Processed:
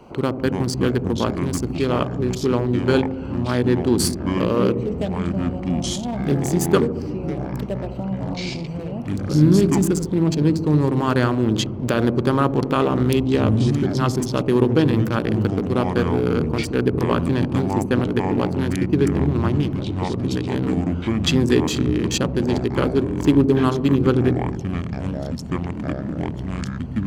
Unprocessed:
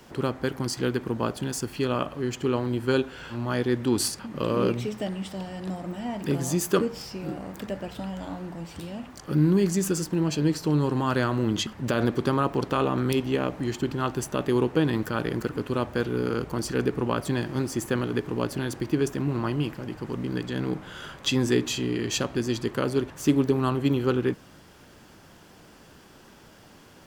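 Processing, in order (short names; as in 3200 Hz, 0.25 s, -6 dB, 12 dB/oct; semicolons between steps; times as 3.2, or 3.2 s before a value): Wiener smoothing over 25 samples; dark delay 72 ms, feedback 71%, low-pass 500 Hz, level -9.5 dB; echoes that change speed 0.192 s, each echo -6 st, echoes 2, each echo -6 dB; mismatched tape noise reduction encoder only; gain +5.5 dB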